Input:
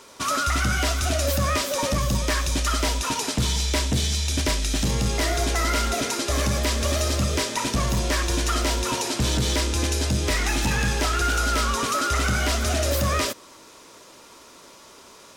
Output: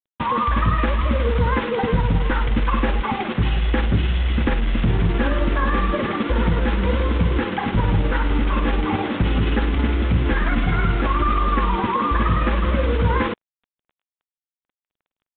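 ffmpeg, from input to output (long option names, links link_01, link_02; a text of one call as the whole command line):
ffmpeg -i in.wav -filter_complex "[0:a]lowpass=1900,equalizer=frequency=790:width=1.5:gain=-6.5,asplit=2[link_01][link_02];[link_02]alimiter=limit=-24dB:level=0:latency=1:release=67,volume=2dB[link_03];[link_01][link_03]amix=inputs=2:normalize=0,flanger=delay=2.9:depth=6.1:regen=79:speed=0.95:shape=triangular,asetrate=37084,aresample=44100,atempo=1.18921,tremolo=f=19:d=0.33,acrusher=bits=5:mix=0:aa=0.5,volume=8dB" -ar 8000 -c:a pcm_mulaw out.wav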